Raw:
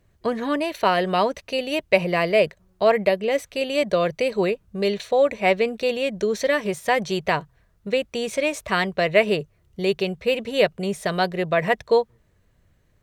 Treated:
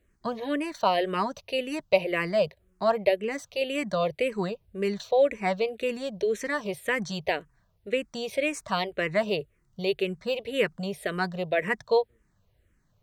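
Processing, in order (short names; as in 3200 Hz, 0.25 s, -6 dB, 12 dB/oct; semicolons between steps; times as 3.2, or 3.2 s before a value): endless phaser -1.9 Hz; gain -2.5 dB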